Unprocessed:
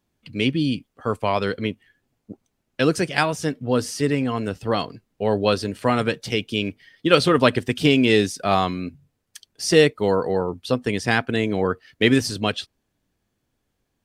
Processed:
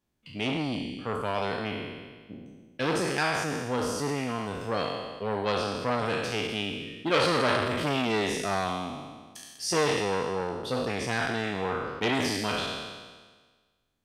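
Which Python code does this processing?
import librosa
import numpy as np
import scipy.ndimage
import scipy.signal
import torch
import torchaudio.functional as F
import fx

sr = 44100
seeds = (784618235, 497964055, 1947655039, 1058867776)

y = fx.spec_trails(x, sr, decay_s=1.46)
y = fx.high_shelf(y, sr, hz=9900.0, db=-10.0, at=(5.52, 6.06))
y = fx.transformer_sat(y, sr, knee_hz=1800.0)
y = y * librosa.db_to_amplitude(-8.0)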